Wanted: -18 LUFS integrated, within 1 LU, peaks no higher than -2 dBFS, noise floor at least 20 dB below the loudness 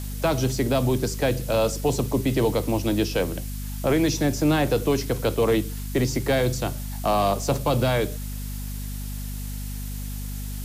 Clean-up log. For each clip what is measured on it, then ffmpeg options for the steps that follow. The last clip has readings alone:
hum 50 Hz; harmonics up to 250 Hz; hum level -29 dBFS; noise floor -32 dBFS; noise floor target -45 dBFS; loudness -25.0 LUFS; peak -11.5 dBFS; loudness target -18.0 LUFS
-> -af "bandreject=f=50:t=h:w=4,bandreject=f=100:t=h:w=4,bandreject=f=150:t=h:w=4,bandreject=f=200:t=h:w=4,bandreject=f=250:t=h:w=4"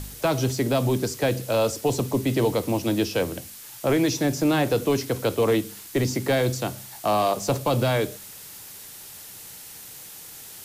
hum none; noise floor -42 dBFS; noise floor target -44 dBFS
-> -af "afftdn=nr=6:nf=-42"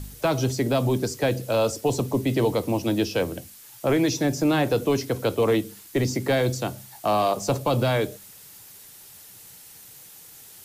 noise floor -47 dBFS; loudness -24.5 LUFS; peak -12.5 dBFS; loudness target -18.0 LUFS
-> -af "volume=6.5dB"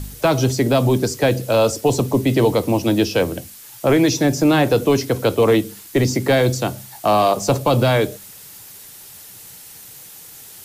loudness -18.0 LUFS; peak -6.0 dBFS; noise floor -40 dBFS

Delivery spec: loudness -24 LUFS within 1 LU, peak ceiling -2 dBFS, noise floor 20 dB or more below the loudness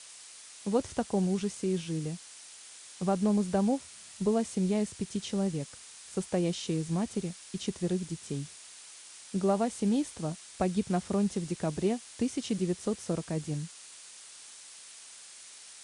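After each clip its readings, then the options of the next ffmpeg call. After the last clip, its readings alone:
noise floor -50 dBFS; noise floor target -52 dBFS; loudness -32.0 LUFS; peak -16.5 dBFS; loudness target -24.0 LUFS
-> -af "afftdn=nr=6:nf=-50"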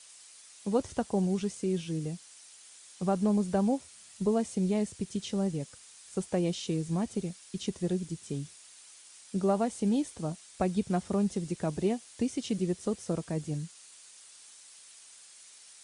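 noise floor -54 dBFS; loudness -32.0 LUFS; peak -16.5 dBFS; loudness target -24.0 LUFS
-> -af "volume=8dB"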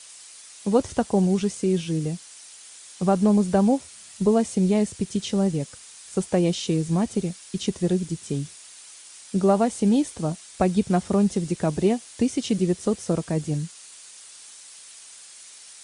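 loudness -24.0 LUFS; peak -8.5 dBFS; noise floor -46 dBFS

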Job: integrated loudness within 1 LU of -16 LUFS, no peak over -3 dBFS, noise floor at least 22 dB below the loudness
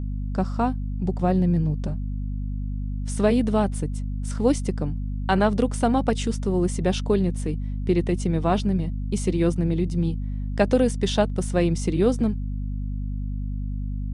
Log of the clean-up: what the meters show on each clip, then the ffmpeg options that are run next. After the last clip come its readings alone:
hum 50 Hz; harmonics up to 250 Hz; hum level -25 dBFS; loudness -24.5 LUFS; peak -7.5 dBFS; loudness target -16.0 LUFS
-> -af "bandreject=f=50:t=h:w=4,bandreject=f=100:t=h:w=4,bandreject=f=150:t=h:w=4,bandreject=f=200:t=h:w=4,bandreject=f=250:t=h:w=4"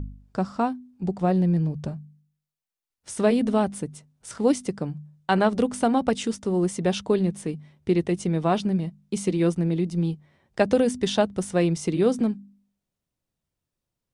hum none; loudness -24.5 LUFS; peak -8.0 dBFS; loudness target -16.0 LUFS
-> -af "volume=8.5dB,alimiter=limit=-3dB:level=0:latency=1"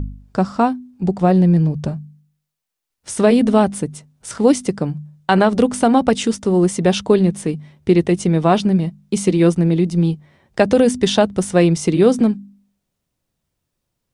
loudness -16.5 LUFS; peak -3.0 dBFS; noise floor -78 dBFS

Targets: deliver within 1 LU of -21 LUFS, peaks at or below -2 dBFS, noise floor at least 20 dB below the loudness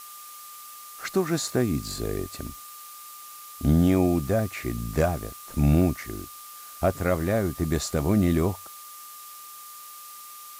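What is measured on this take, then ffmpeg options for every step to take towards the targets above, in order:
steady tone 1200 Hz; tone level -45 dBFS; noise floor -43 dBFS; noise floor target -46 dBFS; loudness -25.5 LUFS; peak -10.5 dBFS; loudness target -21.0 LUFS
-> -af "bandreject=f=1.2k:w=30"
-af "afftdn=nr=6:nf=-43"
-af "volume=4.5dB"

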